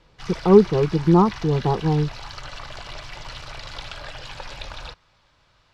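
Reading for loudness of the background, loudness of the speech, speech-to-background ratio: -36.5 LUFS, -19.0 LUFS, 17.5 dB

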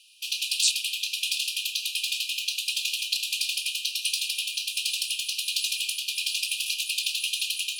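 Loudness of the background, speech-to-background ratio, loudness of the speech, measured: -26.5 LUFS, -1.0 dB, -27.5 LUFS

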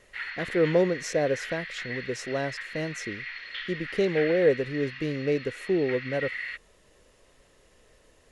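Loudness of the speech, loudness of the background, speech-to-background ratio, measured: -28.0 LUFS, -36.0 LUFS, 8.0 dB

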